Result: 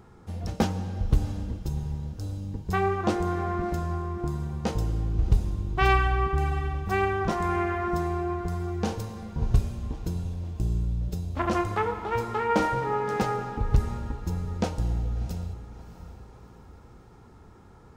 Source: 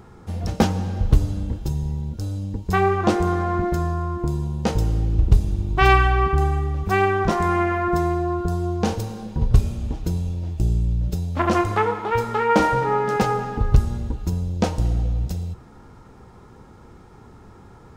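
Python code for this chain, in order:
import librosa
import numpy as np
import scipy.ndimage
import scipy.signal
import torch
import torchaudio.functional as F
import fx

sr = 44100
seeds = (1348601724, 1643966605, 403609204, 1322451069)

y = fx.echo_diffused(x, sr, ms=673, feedback_pct=48, wet_db=-15.0)
y = y * librosa.db_to_amplitude(-6.5)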